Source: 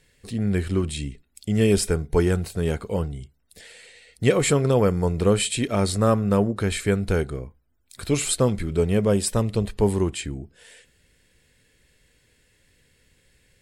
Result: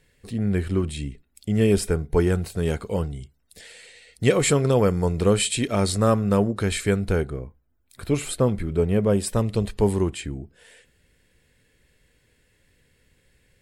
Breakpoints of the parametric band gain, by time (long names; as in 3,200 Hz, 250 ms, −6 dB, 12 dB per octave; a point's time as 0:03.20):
parametric band 6,100 Hz 2.2 octaves
0:02.14 −5 dB
0:02.73 +1.5 dB
0:06.90 +1.5 dB
0:07.33 −9 dB
0:09.00 −9 dB
0:09.69 +2 dB
0:10.24 −5 dB